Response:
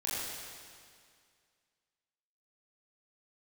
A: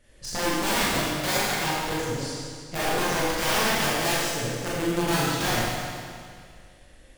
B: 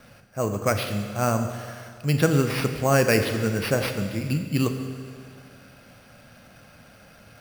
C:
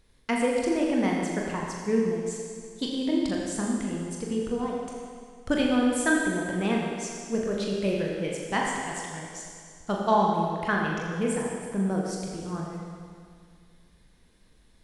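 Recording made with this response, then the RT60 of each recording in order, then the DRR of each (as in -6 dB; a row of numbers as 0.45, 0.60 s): A; 2.1, 2.1, 2.1 s; -9.0, 6.5, -2.5 dB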